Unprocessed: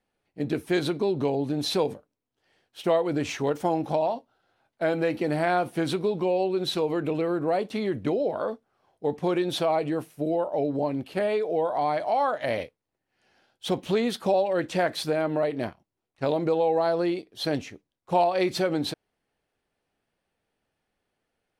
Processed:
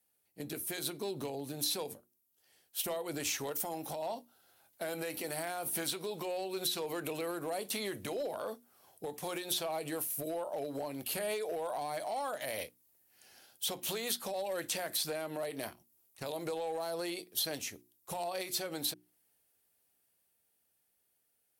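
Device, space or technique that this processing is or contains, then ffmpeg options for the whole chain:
FM broadcast chain: -filter_complex "[0:a]highpass=42,dynaudnorm=framelen=700:gausssize=11:maxgain=11.5dB,acrossover=split=480|6600[link_01][link_02][link_03];[link_01]acompressor=threshold=-29dB:ratio=4[link_04];[link_02]acompressor=threshold=-20dB:ratio=4[link_05];[link_03]acompressor=threshold=-46dB:ratio=4[link_06];[link_04][link_05][link_06]amix=inputs=3:normalize=0,aemphasis=mode=production:type=50fm,alimiter=limit=-20dB:level=0:latency=1:release=330,asoftclip=type=hard:threshold=-22dB,lowpass=frequency=15000:width=0.5412,lowpass=frequency=15000:width=1.3066,aemphasis=mode=production:type=50fm,bandreject=frequency=60:width_type=h:width=6,bandreject=frequency=120:width_type=h:width=6,bandreject=frequency=180:width_type=h:width=6,bandreject=frequency=240:width_type=h:width=6,bandreject=frequency=300:width_type=h:width=6,bandreject=frequency=360:width_type=h:width=6,volume=-8.5dB"

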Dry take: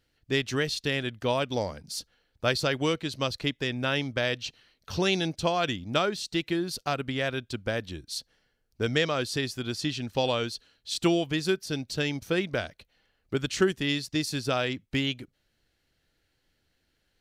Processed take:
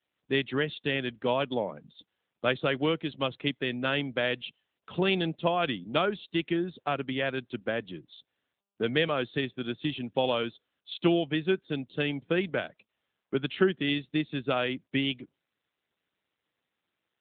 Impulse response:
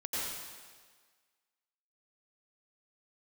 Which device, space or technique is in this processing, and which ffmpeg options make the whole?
mobile call with aggressive noise cancelling: -af "highpass=frequency=140:width=0.5412,highpass=frequency=140:width=1.3066,afftdn=noise_reduction=22:noise_floor=-48" -ar 8000 -c:a libopencore_amrnb -b:a 10200

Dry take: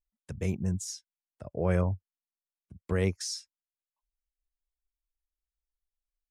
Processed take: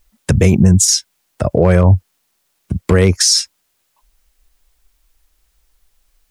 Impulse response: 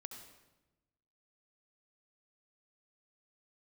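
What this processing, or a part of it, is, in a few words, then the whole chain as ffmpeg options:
loud club master: -af "acompressor=threshold=-29dB:ratio=2.5,asoftclip=type=hard:threshold=-22.5dB,alimiter=level_in=32dB:limit=-1dB:release=50:level=0:latency=1,volume=-1.5dB"

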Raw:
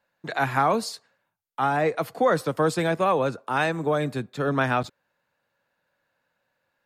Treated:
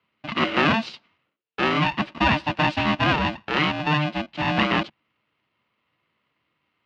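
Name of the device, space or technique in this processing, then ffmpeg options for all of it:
ring modulator pedal into a guitar cabinet: -af "aeval=exprs='val(0)*sgn(sin(2*PI*450*n/s))':channel_layout=same,highpass=85,equalizer=frequency=150:width_type=q:width=4:gain=5,equalizer=frequency=220:width_type=q:width=4:gain=7,equalizer=frequency=320:width_type=q:width=4:gain=3,equalizer=frequency=2700:width_type=q:width=4:gain=9,lowpass=frequency=4200:width=0.5412,lowpass=frequency=4200:width=1.3066"

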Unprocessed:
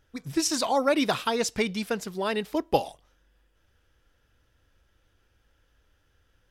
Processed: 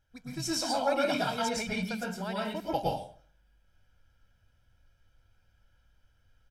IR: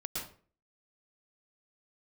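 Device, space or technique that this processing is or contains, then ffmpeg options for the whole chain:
microphone above a desk: -filter_complex "[0:a]aecho=1:1:1.3:0.59[link_01];[1:a]atrim=start_sample=2205[link_02];[link_01][link_02]afir=irnorm=-1:irlink=0,volume=-7dB"

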